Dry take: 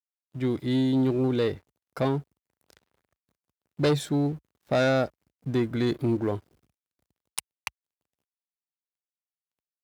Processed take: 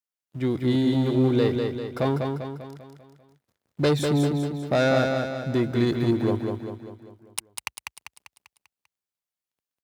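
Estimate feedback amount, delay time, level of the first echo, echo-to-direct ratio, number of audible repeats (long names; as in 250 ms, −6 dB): 50%, 197 ms, −4.5 dB, −3.0 dB, 6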